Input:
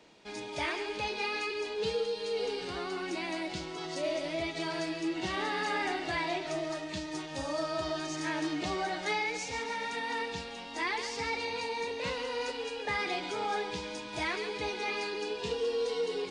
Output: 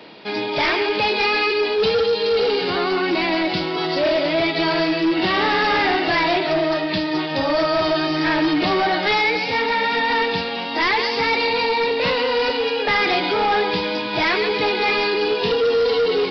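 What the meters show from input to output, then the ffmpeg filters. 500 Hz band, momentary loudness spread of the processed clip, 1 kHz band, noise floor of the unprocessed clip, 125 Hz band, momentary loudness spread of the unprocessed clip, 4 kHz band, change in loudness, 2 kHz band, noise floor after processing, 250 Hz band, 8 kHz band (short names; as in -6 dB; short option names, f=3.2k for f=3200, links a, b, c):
+15.0 dB, 4 LU, +15.0 dB, -42 dBFS, +13.0 dB, 5 LU, +15.5 dB, +15.0 dB, +15.0 dB, -25 dBFS, +15.0 dB, n/a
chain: -af "highpass=130,aresample=11025,aeval=exprs='0.0891*sin(PI/2*2.24*val(0)/0.0891)':c=same,aresample=44100,volume=6.5dB"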